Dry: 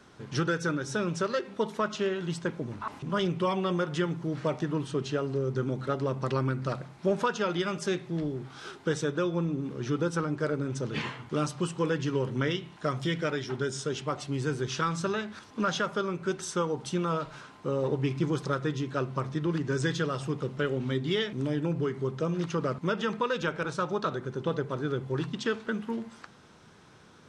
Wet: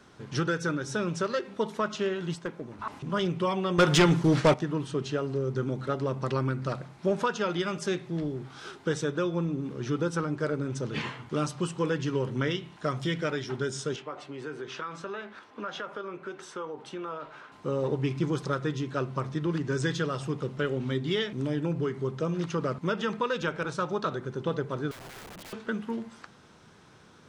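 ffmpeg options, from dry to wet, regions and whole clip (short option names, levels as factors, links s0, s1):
-filter_complex "[0:a]asettb=1/sr,asplit=3[s0][s1][s2];[s0]atrim=end=2.354[s3];[s1]atrim=start=2.35:end=2.79,asetpts=PTS-STARTPTS,afade=t=in:d=0.004:c=qsin,afade=t=out:st=0.436:d=0.004:c=qsin,lowpass=f=1400:p=1,aemphasis=mode=production:type=bsi,aeval=exprs='clip(val(0),-1,0.0376)':c=same[s4];[s2]atrim=start=2.786[s5];[s3][s4]acrossfade=d=0.004:c1=hsin:c2=qsin[s6];[s6][s5]acrossfade=d=0.004:c1=qsin:c2=hsin,asettb=1/sr,asplit=3[s7][s8][s9];[s7]atrim=end=3.784[s10];[s8]atrim=start=3.78:end=4.54,asetpts=PTS-STARTPTS,afade=t=in:d=0.004:c=qsin,afade=t=out:st=0.756:d=0.004:c=qsin,agate=range=0.0224:threshold=0.0141:ratio=3:release=100:detection=peak,highshelf=f=2100:g=7,aeval=exprs='0.188*sin(PI/2*2.24*val(0)/0.188)':c=same[s11];[s9]atrim=start=4.536[s12];[s10][s11]acrossfade=d=0.004:c1=hsin:c2=qsin[s13];[s13][s12]acrossfade=d=0.004:c1=qsin:c2=hsin,asettb=1/sr,asplit=3[s14][s15][s16];[s14]atrim=end=13.964[s17];[s15]atrim=start=13.96:end=17.52,asetpts=PTS-STARTPTS,afade=t=in:d=0.004:c=qsin,afade=t=out:st=3.556:d=0.004:c=qsin,acrossover=split=290 3200:gain=0.178 1 0.2[s18][s19][s20];[s18][s19][s20]amix=inputs=3:normalize=0,acompressor=threshold=0.02:ratio=3:attack=3.2:release=140:knee=1:detection=peak,asplit=2[s21][s22];[s22]adelay=20,volume=0.224[s23];[s21][s23]amix=inputs=2:normalize=0,atrim=end_sample=156996[s24];[s16]atrim=start=17.516[s25];[s17][s24]acrossfade=d=0.004:c1=hsin:c2=qsin[s26];[s26][s25]acrossfade=d=0.004:c1=qsin:c2=hsin,asettb=1/sr,asplit=3[s27][s28][s29];[s27]atrim=end=24.914[s30];[s28]atrim=start=24.91:end=25.53,asetpts=PTS-STARTPTS,afade=t=in:d=0.004:c=qsin,afade=t=out:st=0.616:d=0.004:c=qsin,lowpass=1600,acompressor=threshold=0.0141:ratio=4:attack=3.2:release=140:knee=1:detection=peak,aeval=exprs='(mod(106*val(0)+1,2)-1)/106':c=same[s31];[s29]atrim=start=25.526[s32];[s30][s31]acrossfade=d=0.004:c1=hsin:c2=qsin[s33];[s33][s32]acrossfade=d=0.004:c1=qsin:c2=hsin"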